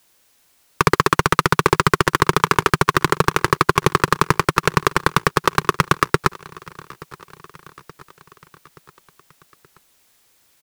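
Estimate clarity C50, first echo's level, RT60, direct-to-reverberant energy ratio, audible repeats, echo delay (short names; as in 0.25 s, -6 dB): none, -22.0 dB, none, none, 3, 0.876 s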